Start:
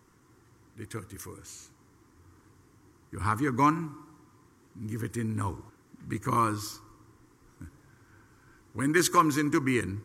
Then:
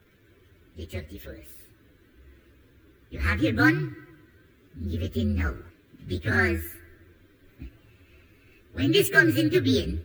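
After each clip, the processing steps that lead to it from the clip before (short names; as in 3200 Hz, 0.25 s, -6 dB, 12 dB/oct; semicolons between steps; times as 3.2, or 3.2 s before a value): inharmonic rescaling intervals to 129%; gain +6.5 dB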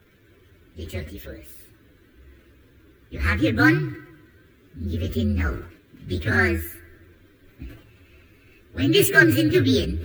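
sustainer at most 100 dB/s; gain +3 dB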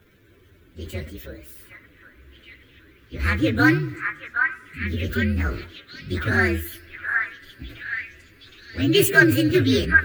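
delay with a stepping band-pass 0.768 s, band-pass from 1500 Hz, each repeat 0.7 oct, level -1 dB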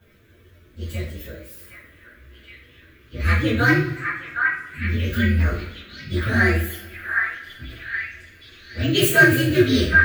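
two-slope reverb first 0.4 s, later 1.7 s, from -18 dB, DRR -7.5 dB; gain -6.5 dB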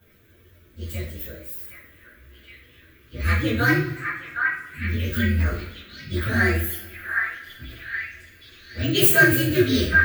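high shelf 11000 Hz +12 dB; gain -2.5 dB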